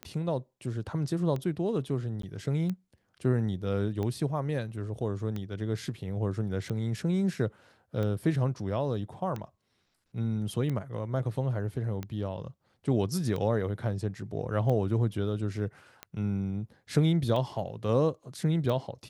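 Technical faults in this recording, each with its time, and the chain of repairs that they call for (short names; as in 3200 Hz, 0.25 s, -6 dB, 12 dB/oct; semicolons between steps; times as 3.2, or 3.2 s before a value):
tick 45 rpm -22 dBFS
2.22–2.23 gap 13 ms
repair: de-click; interpolate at 2.22, 13 ms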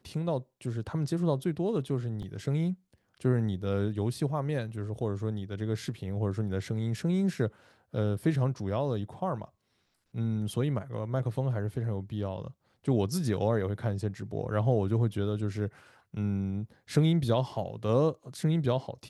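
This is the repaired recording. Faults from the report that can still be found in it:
none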